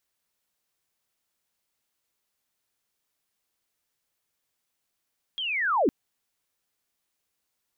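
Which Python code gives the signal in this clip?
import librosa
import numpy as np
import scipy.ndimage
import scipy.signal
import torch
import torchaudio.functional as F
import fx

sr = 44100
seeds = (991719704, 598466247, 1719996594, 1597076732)

y = fx.chirp(sr, length_s=0.51, from_hz=3300.0, to_hz=220.0, law='linear', from_db=-28.5, to_db=-18.0)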